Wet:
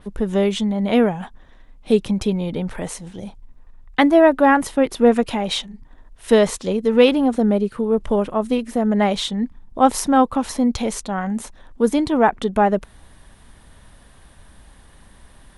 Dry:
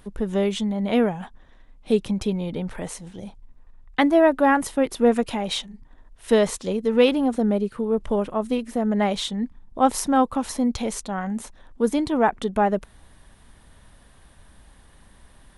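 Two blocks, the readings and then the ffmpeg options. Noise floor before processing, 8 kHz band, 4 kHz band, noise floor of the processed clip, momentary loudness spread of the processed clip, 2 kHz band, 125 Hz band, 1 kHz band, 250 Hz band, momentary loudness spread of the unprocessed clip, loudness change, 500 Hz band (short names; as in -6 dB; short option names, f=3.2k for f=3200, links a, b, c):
-53 dBFS, +2.5 dB, +4.0 dB, -49 dBFS, 12 LU, +4.0 dB, +4.0 dB, +4.0 dB, +4.0 dB, 12 LU, +4.0 dB, +4.0 dB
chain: -af "adynamicequalizer=threshold=0.00794:dfrequency=5800:dqfactor=0.7:tfrequency=5800:tqfactor=0.7:attack=5:release=100:ratio=0.375:range=2.5:mode=cutabove:tftype=highshelf,volume=4dB"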